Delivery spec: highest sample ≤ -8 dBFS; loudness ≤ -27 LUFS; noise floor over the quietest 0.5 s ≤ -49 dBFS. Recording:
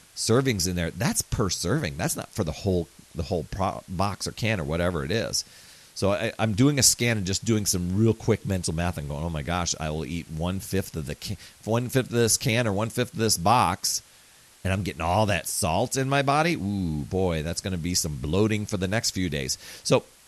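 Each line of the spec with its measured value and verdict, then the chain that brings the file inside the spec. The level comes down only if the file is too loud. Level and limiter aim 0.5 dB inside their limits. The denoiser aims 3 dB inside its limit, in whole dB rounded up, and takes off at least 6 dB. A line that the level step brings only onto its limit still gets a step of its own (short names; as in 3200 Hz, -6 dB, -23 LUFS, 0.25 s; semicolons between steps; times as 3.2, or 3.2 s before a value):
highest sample -6.0 dBFS: fail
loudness -25.5 LUFS: fail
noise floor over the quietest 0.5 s -54 dBFS: OK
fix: gain -2 dB; limiter -8.5 dBFS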